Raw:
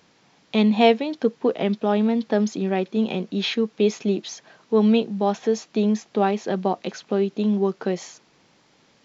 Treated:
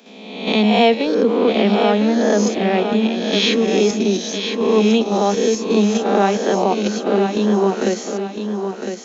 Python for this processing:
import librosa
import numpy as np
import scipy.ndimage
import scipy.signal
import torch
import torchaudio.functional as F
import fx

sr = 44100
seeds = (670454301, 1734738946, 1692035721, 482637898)

p1 = fx.spec_swells(x, sr, rise_s=1.04)
p2 = scipy.signal.sosfilt(scipy.signal.butter(16, 190.0, 'highpass', fs=sr, output='sos'), p1)
p3 = fx.high_shelf(p2, sr, hz=6500.0, db=6.5)
p4 = fx.level_steps(p3, sr, step_db=24)
p5 = p3 + F.gain(torch.from_numpy(p4), 1.0).numpy()
p6 = fx.quant_dither(p5, sr, seeds[0], bits=12, dither='none', at=(6.28, 7.82))
p7 = p6 + fx.echo_feedback(p6, sr, ms=1007, feedback_pct=36, wet_db=-7.0, dry=0)
y = F.gain(torch.from_numpy(p7), -1.0).numpy()